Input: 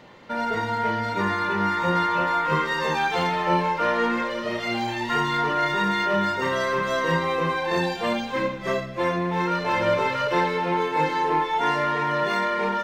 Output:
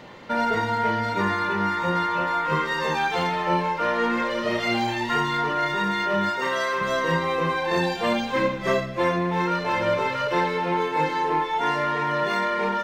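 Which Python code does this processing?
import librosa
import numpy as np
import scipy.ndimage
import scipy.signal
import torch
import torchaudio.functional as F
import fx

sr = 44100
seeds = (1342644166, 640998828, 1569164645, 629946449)

y = fx.highpass(x, sr, hz=fx.line((6.29, 370.0), (6.8, 780.0)), slope=6, at=(6.29, 6.8), fade=0.02)
y = fx.rider(y, sr, range_db=5, speed_s=0.5)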